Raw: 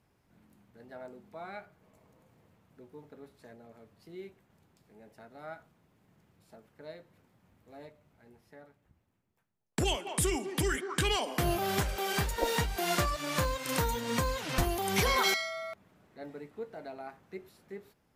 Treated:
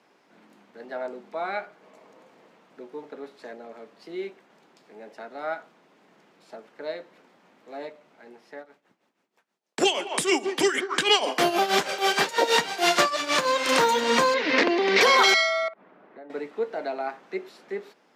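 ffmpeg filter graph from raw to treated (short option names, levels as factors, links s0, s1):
-filter_complex "[0:a]asettb=1/sr,asplit=3[s0][s1][s2];[s0]atrim=end=8.584[s3];[s1]atrim=start=8.58:end=13.52,asetpts=PTS-STARTPTS,afade=t=in:d=0.004:c=qsin,afade=t=out:st=4.936:d=0.004:c=qsin,highshelf=f=3700:g=4,tremolo=f=6.3:d=0.76[s4];[s2]atrim=start=13.516[s5];[s3][s4]acrossfade=d=0.004:c1=hsin:c2=qsin[s6];[s6][s5]acrossfade=d=0.004:c1=qsin:c2=hsin,asettb=1/sr,asplit=3[s7][s8][s9];[s7]atrim=end=14.344[s10];[s8]atrim=start=14.34:end=15.01,asetpts=PTS-STARTPTS,afade=t=in:d=0.004:c=qsin,afade=t=out:st=0.666:d=0.004:c=qsin,aeval=exprs='(mod(11.9*val(0)+1,2)-1)/11.9':c=same,highpass=200,equalizer=f=270:t=q:w=4:g=9,equalizer=f=450:t=q:w=4:g=4,equalizer=f=770:t=q:w=4:g=-10,equalizer=f=1300:t=q:w=4:g=-7,equalizer=f=2000:t=q:w=4:g=6,equalizer=f=3200:t=q:w=4:g=-6,lowpass=f=4600:w=0.5412,lowpass=f=4600:w=1.3066[s11];[s9]atrim=start=15.006[s12];[s10][s11]acrossfade=d=0.004:c1=hsin:c2=qsin[s13];[s13][s12]acrossfade=d=0.004:c1=qsin:c2=hsin,asettb=1/sr,asplit=3[s14][s15][s16];[s14]atrim=end=15.684[s17];[s15]atrim=start=15.68:end=16.3,asetpts=PTS-STARTPTS,afade=t=in:d=0.004:c=qsin,afade=t=out:st=0.616:d=0.004:c=qsin,lowpass=1800,acompressor=threshold=0.00251:ratio=16:attack=3.2:release=140:knee=1:detection=peak[s18];[s16]atrim=start=16.296[s19];[s17][s18]acrossfade=d=0.004:c1=hsin:c2=qsin[s20];[s20][s19]acrossfade=d=0.004:c1=qsin:c2=hsin,highpass=f=180:w=0.5412,highpass=f=180:w=1.3066,acrossover=split=280 6800:gain=0.224 1 0.126[s21][s22][s23];[s21][s22][s23]amix=inputs=3:normalize=0,alimiter=level_in=11.9:limit=0.891:release=50:level=0:latency=1,volume=0.398"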